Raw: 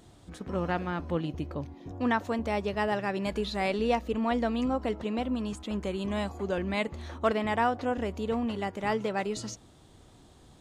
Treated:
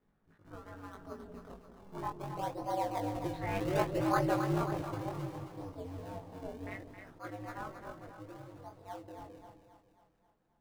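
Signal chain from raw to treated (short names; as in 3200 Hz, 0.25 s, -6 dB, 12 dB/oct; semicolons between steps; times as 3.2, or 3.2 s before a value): Doppler pass-by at 3.98, 14 m/s, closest 8.7 m; LFO low-pass saw down 0.3 Hz 680–1800 Hz; ring modulator 96 Hz; in parallel at -7 dB: decimation with a swept rate 39×, swing 160% 0.66 Hz; on the sum: chorus 0.26 Hz, delay 19 ms, depth 3.5 ms; split-band echo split 610 Hz, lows 0.182 s, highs 0.268 s, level -7.5 dB; attack slew limiter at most 220 dB/s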